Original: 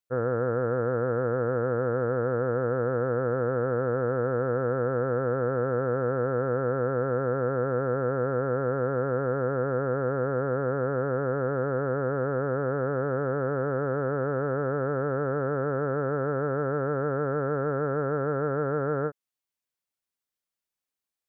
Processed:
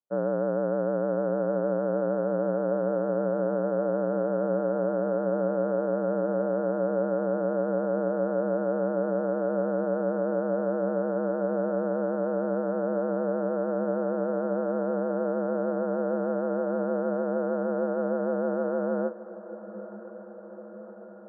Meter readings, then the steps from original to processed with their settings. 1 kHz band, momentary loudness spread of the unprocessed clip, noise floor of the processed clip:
-2.5 dB, 1 LU, -43 dBFS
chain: LPF 1100 Hz 24 dB/oct; frequency shift +66 Hz; diffused feedback echo 1.048 s, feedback 68%, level -15.5 dB

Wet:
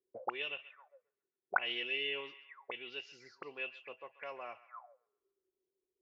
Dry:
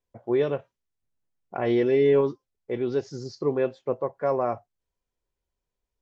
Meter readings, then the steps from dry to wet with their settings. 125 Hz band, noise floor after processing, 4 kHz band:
-34.5 dB, under -85 dBFS, +5.5 dB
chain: narrowing echo 0.134 s, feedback 57%, band-pass 2000 Hz, level -14.5 dB; auto-wah 370–2800 Hz, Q 21, up, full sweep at -28.5 dBFS; gain +17.5 dB

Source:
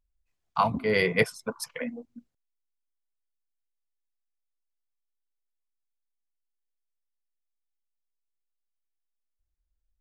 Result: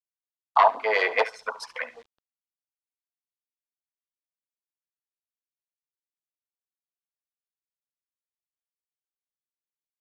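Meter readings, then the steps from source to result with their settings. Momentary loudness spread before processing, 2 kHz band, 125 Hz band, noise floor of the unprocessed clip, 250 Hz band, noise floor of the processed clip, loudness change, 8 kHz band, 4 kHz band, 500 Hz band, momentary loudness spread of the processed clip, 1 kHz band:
13 LU, +2.5 dB, under -30 dB, -81 dBFS, -16.5 dB, under -85 dBFS, +4.0 dB, -7.5 dB, +0.5 dB, +1.0 dB, 15 LU, +7.5 dB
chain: one diode to ground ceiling -22 dBFS; in parallel at -1 dB: compressor 6:1, threshold -35 dBFS, peak gain reduction 15.5 dB; on the sum: ladder high-pass 240 Hz, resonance 20%; on a send: feedback echo 70 ms, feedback 31%, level -16 dB; on the sum: dynamic EQ 1300 Hz, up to +6 dB, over -43 dBFS, Q 0.88; wow and flutter 25 cents; high-pass sweep 730 Hz -> 1700 Hz, 1.17–3.13; requantised 10-bit, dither none; LFO notch sine 9.3 Hz 740–2300 Hz; LPF 4300 Hz 12 dB/oct; noise-modulated level, depth 60%; gain +9 dB

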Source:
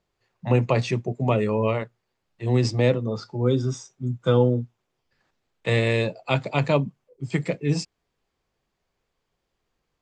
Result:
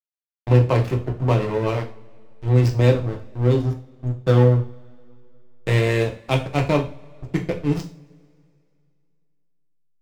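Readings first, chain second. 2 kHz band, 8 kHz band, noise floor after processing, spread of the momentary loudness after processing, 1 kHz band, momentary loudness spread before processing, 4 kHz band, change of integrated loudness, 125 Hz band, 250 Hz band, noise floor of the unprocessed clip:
+0.5 dB, n/a, -63 dBFS, 15 LU, +2.0 dB, 12 LU, -0.5 dB, +3.5 dB, +5.5 dB, +1.5 dB, -79 dBFS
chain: backlash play -20.5 dBFS; two-slope reverb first 0.34 s, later 2.5 s, from -27 dB, DRR 2 dB; gain +1.5 dB

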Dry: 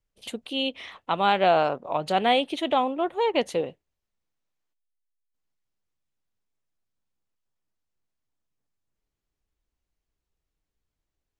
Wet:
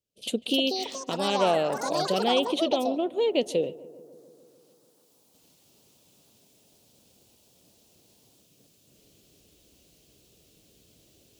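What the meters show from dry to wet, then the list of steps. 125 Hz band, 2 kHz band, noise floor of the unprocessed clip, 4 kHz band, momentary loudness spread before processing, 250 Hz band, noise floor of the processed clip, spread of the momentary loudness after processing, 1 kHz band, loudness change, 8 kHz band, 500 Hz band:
-0.5 dB, -5.0 dB, -85 dBFS, +1.5 dB, 12 LU, +2.0 dB, -63 dBFS, 9 LU, -5.5 dB, -1.5 dB, +9.0 dB, 0.0 dB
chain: recorder AGC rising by 19 dB/s; HPF 130 Hz 12 dB/oct; band shelf 1300 Hz -14.5 dB; echoes that change speed 0.344 s, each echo +6 st, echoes 3, each echo -6 dB; darkening echo 0.146 s, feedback 74%, low-pass 1500 Hz, level -19.5 dB

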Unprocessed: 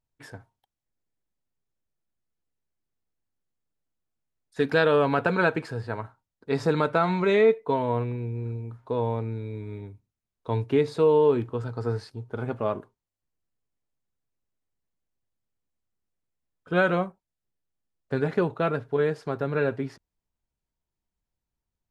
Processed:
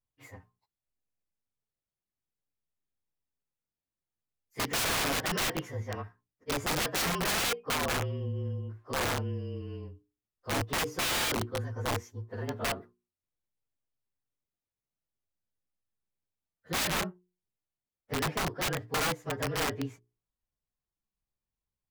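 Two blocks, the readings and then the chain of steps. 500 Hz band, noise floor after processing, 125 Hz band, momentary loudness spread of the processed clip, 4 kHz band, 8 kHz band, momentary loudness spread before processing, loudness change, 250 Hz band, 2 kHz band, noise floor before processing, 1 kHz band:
-13.0 dB, under -85 dBFS, -5.5 dB, 12 LU, +8.5 dB, n/a, 16 LU, -6.0 dB, -8.5 dB, -2.5 dB, under -85 dBFS, -4.5 dB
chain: inharmonic rescaling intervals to 110%; notches 60/120/180/240/300/360/420 Hz; wrapped overs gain 22.5 dB; gain -2 dB

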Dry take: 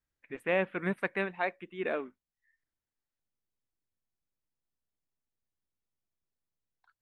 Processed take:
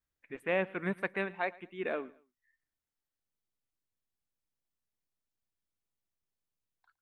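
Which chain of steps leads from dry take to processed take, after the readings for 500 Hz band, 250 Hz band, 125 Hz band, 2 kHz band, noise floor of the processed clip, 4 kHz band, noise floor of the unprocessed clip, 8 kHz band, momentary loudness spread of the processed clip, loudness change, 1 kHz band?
-2.0 dB, -2.0 dB, -2.0 dB, -2.0 dB, under -85 dBFS, -2.0 dB, under -85 dBFS, n/a, 9 LU, -2.0 dB, -2.0 dB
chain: feedback echo 0.112 s, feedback 34%, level -22.5 dB; gain -2 dB

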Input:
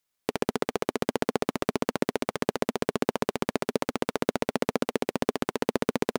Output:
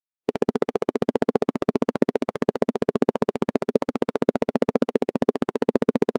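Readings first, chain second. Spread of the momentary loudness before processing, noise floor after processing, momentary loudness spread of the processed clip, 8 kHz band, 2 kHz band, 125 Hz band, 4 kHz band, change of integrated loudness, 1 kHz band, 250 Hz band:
2 LU, -85 dBFS, 3 LU, n/a, -1.5 dB, +5.0 dB, -4.5 dB, +6.0 dB, +2.0 dB, +7.0 dB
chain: in parallel at -9 dB: short-mantissa float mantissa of 2-bit; on the sum: spectral expander 1.5:1; gain +3.5 dB

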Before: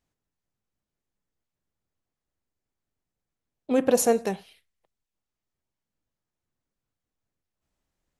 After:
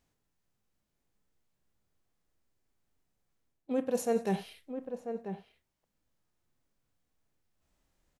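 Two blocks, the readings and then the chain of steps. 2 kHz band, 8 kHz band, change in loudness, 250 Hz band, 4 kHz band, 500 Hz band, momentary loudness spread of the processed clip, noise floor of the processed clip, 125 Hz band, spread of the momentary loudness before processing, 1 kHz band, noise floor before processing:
-9.0 dB, -14.5 dB, -11.0 dB, -6.0 dB, -9.0 dB, -7.5 dB, 12 LU, -82 dBFS, +1.5 dB, 12 LU, -7.5 dB, under -85 dBFS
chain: reverse; compressor 8:1, threshold -34 dBFS, peak gain reduction 18.5 dB; reverse; harmonic-percussive split harmonic +9 dB; outdoor echo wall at 170 m, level -8 dB; gain -1.5 dB

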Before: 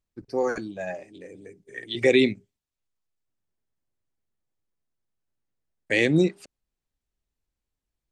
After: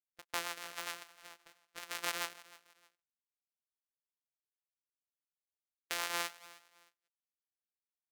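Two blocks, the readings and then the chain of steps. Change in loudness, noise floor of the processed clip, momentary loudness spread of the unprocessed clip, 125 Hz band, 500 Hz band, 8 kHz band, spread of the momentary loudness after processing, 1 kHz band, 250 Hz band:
-15.5 dB, under -85 dBFS, 20 LU, -34.0 dB, -26.0 dB, +3.0 dB, 19 LU, -4.0 dB, -32.0 dB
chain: sample sorter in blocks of 256 samples; HPF 1100 Hz 12 dB/oct; gate -51 dBFS, range -30 dB; compressor 3:1, threshold -36 dBFS, peak gain reduction 13.5 dB; rotary speaker horn 7.5 Hz, later 1.1 Hz, at 4.18; feedback echo 0.309 s, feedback 30%, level -20 dB; gain +3.5 dB

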